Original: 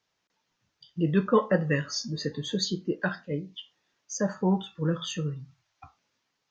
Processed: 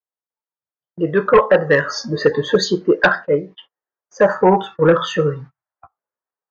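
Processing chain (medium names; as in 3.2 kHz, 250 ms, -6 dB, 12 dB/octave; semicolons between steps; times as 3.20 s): gate -44 dBFS, range -33 dB; level-controlled noise filter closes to 1.5 kHz, open at -22.5 dBFS; high-order bell 840 Hz +14.5 dB 2.7 oct; gain riding within 4 dB 0.5 s; sine folder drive 6 dB, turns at 1 dBFS; trim -5.5 dB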